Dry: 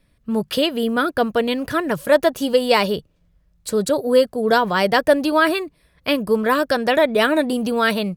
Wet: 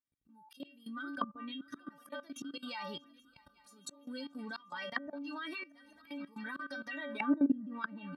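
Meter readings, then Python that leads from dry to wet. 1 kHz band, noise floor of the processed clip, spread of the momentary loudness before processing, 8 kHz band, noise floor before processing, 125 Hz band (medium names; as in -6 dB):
-22.5 dB, -68 dBFS, 8 LU, -20.5 dB, -61 dBFS, -24.0 dB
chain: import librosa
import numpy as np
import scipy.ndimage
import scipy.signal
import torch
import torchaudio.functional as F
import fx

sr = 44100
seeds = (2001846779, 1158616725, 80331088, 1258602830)

p1 = fx.bin_expand(x, sr, power=1.5)
p2 = fx.recorder_agc(p1, sr, target_db=-14.0, rise_db_per_s=56.0, max_gain_db=30)
p3 = fx.peak_eq(p2, sr, hz=1300.0, db=5.5, octaves=0.57)
p4 = fx.notch(p3, sr, hz=660.0, q=19.0)
p5 = fx.stiff_resonator(p4, sr, f0_hz=280.0, decay_s=0.29, stiffness=0.008)
p6 = fx.auto_swell(p5, sr, attack_ms=607.0)
p7 = fx.peak_eq(p6, sr, hz=480.0, db=-14.0, octaves=0.73)
p8 = p7 + fx.echo_swing(p7, sr, ms=831, ratio=3, feedback_pct=57, wet_db=-23.5, dry=0)
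p9 = fx.level_steps(p8, sr, step_db=18)
p10 = fx.env_lowpass_down(p9, sr, base_hz=500.0, full_db=-41.5)
p11 = scipy.signal.sosfilt(scipy.signal.butter(2, 190.0, 'highpass', fs=sr, output='sos'), p10)
y = F.gain(torch.from_numpy(p11), 13.0).numpy()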